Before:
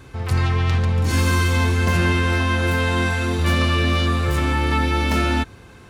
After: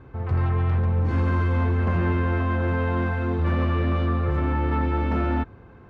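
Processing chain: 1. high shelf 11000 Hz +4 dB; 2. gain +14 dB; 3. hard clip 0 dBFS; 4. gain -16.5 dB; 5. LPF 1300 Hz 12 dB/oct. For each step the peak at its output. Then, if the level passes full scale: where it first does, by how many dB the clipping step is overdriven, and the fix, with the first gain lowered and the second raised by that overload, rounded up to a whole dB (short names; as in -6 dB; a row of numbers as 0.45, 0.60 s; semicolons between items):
-6.5, +7.5, 0.0, -16.5, -16.0 dBFS; step 2, 7.5 dB; step 2 +6 dB, step 4 -8.5 dB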